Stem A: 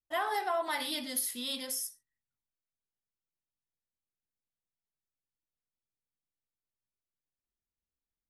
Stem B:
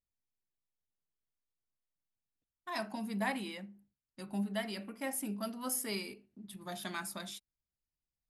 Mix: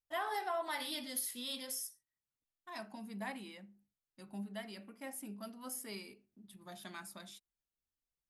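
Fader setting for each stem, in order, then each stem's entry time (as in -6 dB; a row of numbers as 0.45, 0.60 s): -5.5, -8.0 dB; 0.00, 0.00 s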